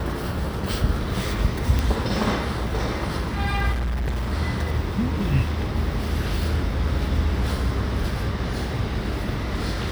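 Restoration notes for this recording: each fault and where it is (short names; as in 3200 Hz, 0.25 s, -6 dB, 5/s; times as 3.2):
1.79 pop
3.72–4.33 clipped -22 dBFS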